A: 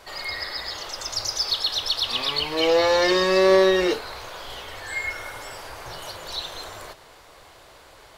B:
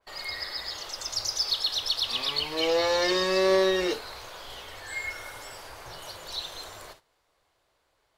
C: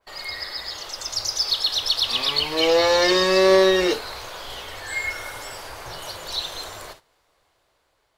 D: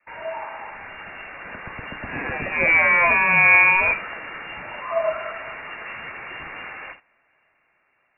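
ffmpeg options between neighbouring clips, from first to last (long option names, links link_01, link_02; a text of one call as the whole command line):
ffmpeg -i in.wav -af "agate=range=-17dB:threshold=-44dB:ratio=16:detection=peak,adynamicequalizer=threshold=0.0112:dfrequency=3100:dqfactor=0.7:tfrequency=3100:tqfactor=0.7:attack=5:release=100:ratio=0.375:range=2:mode=boostabove:tftype=highshelf,volume=-6dB" out.wav
ffmpeg -i in.wav -af "dynaudnorm=framelen=660:gausssize=5:maxgain=4dB,volume=3dB" out.wav
ffmpeg -i in.wav -af "highshelf=frequency=2000:gain=11.5,lowpass=frequency=2400:width_type=q:width=0.5098,lowpass=frequency=2400:width_type=q:width=0.6013,lowpass=frequency=2400:width_type=q:width=0.9,lowpass=frequency=2400:width_type=q:width=2.563,afreqshift=-2800" out.wav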